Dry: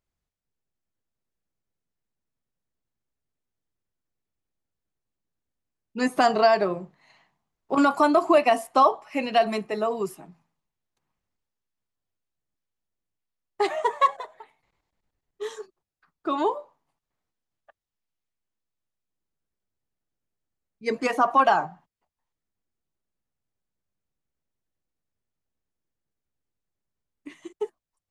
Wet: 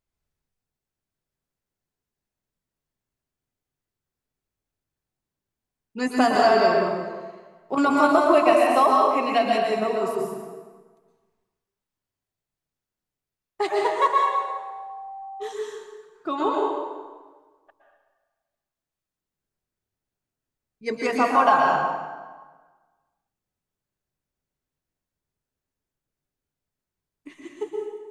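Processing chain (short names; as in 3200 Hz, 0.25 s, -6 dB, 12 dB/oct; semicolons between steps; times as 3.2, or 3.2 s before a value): plate-style reverb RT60 1.4 s, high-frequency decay 0.75×, pre-delay 0.105 s, DRR -2 dB; 14.23–15.51 whine 780 Hz -33 dBFS; gain -1.5 dB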